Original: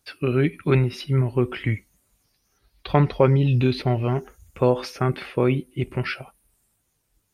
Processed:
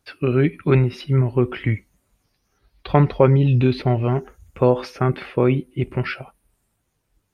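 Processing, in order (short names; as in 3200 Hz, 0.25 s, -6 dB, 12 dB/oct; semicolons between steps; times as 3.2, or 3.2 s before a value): high shelf 4000 Hz -10 dB; gain +3 dB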